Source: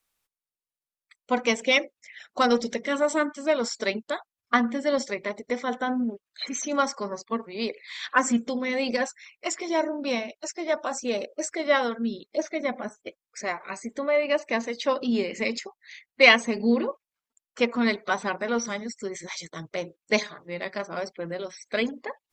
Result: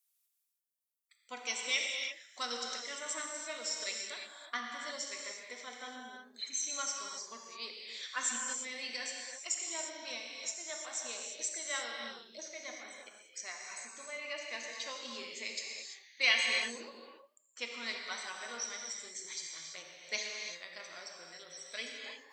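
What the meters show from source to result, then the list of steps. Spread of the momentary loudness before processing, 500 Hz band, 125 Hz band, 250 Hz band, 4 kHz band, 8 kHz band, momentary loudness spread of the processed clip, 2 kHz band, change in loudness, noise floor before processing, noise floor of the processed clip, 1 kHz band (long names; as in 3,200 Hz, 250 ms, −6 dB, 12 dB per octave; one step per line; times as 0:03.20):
12 LU, −21.5 dB, can't be measured, −26.5 dB, −5.0 dB, −0.5 dB, 13 LU, −10.5 dB, −11.0 dB, below −85 dBFS, −78 dBFS, −16.5 dB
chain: first-order pre-emphasis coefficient 0.97
reverb whose tail is shaped and stops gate 370 ms flat, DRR 0 dB
feedback echo with a swinging delay time 85 ms, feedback 43%, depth 123 cents, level −21 dB
level −2.5 dB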